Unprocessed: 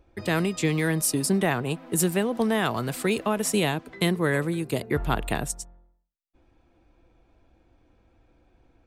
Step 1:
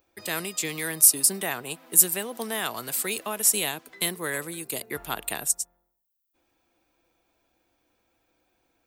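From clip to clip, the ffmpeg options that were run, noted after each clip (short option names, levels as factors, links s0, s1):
-af "aemphasis=mode=production:type=riaa,volume=0.562"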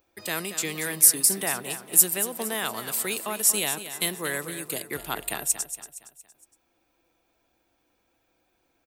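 -af "aecho=1:1:232|464|696|928:0.266|0.117|0.0515|0.0227"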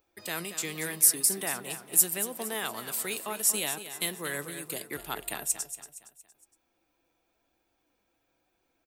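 -af "flanger=delay=2.3:depth=5:regen=77:speed=0.78:shape=sinusoidal"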